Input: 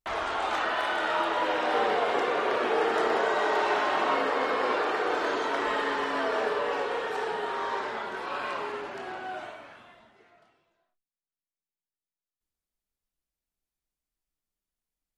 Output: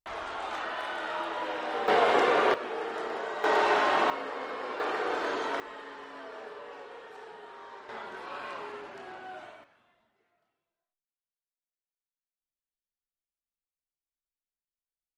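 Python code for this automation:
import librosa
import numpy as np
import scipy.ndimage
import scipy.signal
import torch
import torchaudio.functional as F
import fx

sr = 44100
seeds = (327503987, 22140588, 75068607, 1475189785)

y = fx.gain(x, sr, db=fx.steps((0.0, -6.5), (1.88, 3.5), (2.54, -9.0), (3.44, 1.5), (4.1, -9.5), (4.8, -3.0), (5.6, -15.5), (7.89, -6.5), (9.64, -15.5)))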